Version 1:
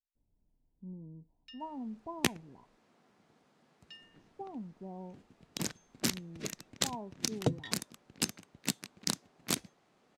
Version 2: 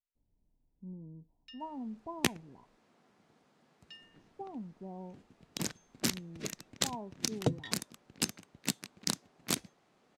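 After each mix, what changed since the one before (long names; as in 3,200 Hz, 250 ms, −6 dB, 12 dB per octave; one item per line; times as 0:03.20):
nothing changed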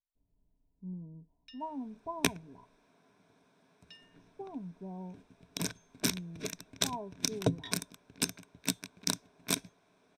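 master: add EQ curve with evenly spaced ripples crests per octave 1.6, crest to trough 9 dB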